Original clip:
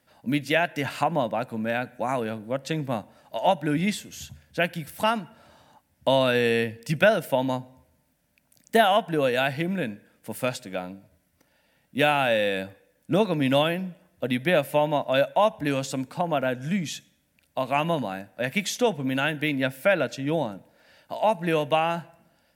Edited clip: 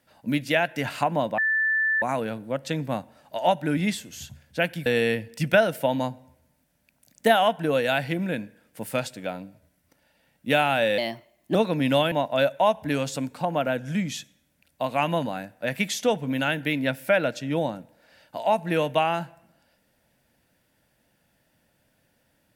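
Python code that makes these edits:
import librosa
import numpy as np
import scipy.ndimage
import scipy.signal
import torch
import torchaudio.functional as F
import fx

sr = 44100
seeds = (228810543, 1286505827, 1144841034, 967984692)

y = fx.edit(x, sr, fx.bleep(start_s=1.38, length_s=0.64, hz=1760.0, db=-20.0),
    fx.cut(start_s=4.86, length_s=1.49),
    fx.speed_span(start_s=12.47, length_s=0.68, speed=1.2),
    fx.cut(start_s=13.72, length_s=1.16), tone=tone)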